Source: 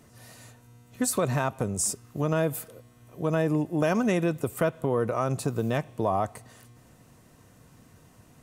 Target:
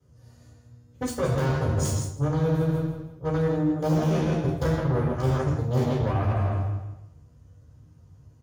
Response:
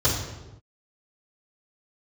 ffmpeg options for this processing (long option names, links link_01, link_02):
-filter_complex "[0:a]flanger=delay=5.5:depth=4.8:regen=59:speed=1:shape=sinusoidal,aeval=exprs='0.168*(cos(1*acos(clip(val(0)/0.168,-1,1)))-cos(1*PI/2))+0.0531*(cos(3*acos(clip(val(0)/0.168,-1,1)))-cos(3*PI/2))':channel_layout=same,lowshelf=frequency=130:gain=10.5,aecho=1:1:162|324|486|648:0.422|0.127|0.038|0.0114,acrossover=split=640|910[link_01][link_02][link_03];[link_03]aeval=exprs='(mod(28.2*val(0)+1,2)-1)/28.2':channel_layout=same[link_04];[link_01][link_02][link_04]amix=inputs=3:normalize=0,asplit=2[link_05][link_06];[link_06]adelay=13,volume=-3.5dB[link_07];[link_05][link_07]amix=inputs=2:normalize=0[link_08];[1:a]atrim=start_sample=2205,asetrate=42777,aresample=44100[link_09];[link_08][link_09]afir=irnorm=-1:irlink=0,areverse,acompressor=threshold=-23dB:ratio=6,areverse,volume=1.5dB"